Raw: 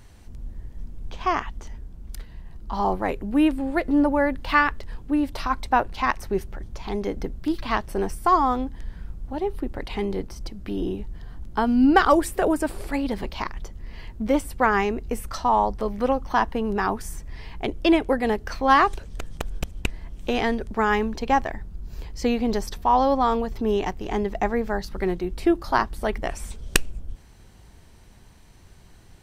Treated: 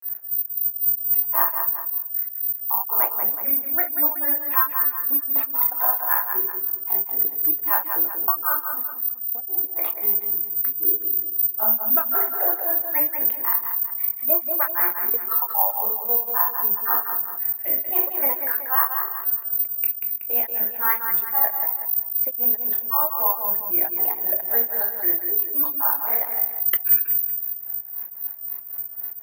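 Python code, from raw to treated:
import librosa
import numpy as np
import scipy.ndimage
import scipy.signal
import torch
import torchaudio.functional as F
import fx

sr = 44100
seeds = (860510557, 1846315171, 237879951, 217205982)

p1 = fx.envelope_sharpen(x, sr, power=1.5)
p2 = fx.room_shoebox(p1, sr, seeds[0], volume_m3=130.0, walls='mixed', distance_m=0.76)
p3 = fx.granulator(p2, sr, seeds[1], grain_ms=214.0, per_s=3.8, spray_ms=30.0, spread_st=3)
p4 = fx.lowpass_res(p3, sr, hz=1800.0, q=1.6)
p5 = fx.rider(p4, sr, range_db=4, speed_s=0.5)
p6 = (np.kron(scipy.signal.resample_poly(p5, 1, 3), np.eye(3)[0]) * 3)[:len(p5)]
p7 = scipy.signal.sosfilt(scipy.signal.butter(2, 660.0, 'highpass', fs=sr, output='sos'), p6)
p8 = p7 + fx.echo_feedback(p7, sr, ms=187, feedback_pct=24, wet_db=-12.5, dry=0)
p9 = fx.env_flatten(p8, sr, amount_pct=50)
y = p9 * 10.0 ** (-9.5 / 20.0)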